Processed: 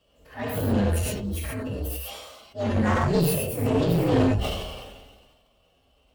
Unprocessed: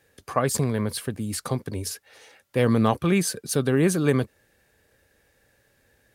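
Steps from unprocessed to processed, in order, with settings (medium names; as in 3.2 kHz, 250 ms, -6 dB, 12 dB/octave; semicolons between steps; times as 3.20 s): frequency axis rescaled in octaves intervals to 129%; treble shelf 3.3 kHz -8 dB; transient shaper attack -11 dB, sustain +9 dB; random-step tremolo; gated-style reverb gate 160 ms flat, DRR -3.5 dB; one-sided clip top -27 dBFS; decay stretcher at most 38 dB/s; trim +2.5 dB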